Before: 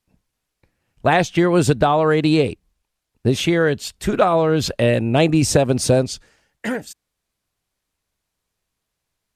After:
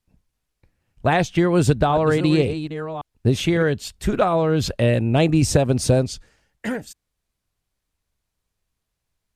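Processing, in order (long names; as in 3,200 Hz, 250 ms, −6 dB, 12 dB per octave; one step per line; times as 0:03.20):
0:01.34–0:03.63: delay that plays each chunk backwards 558 ms, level −10.5 dB
low-shelf EQ 120 Hz +10 dB
level −3.5 dB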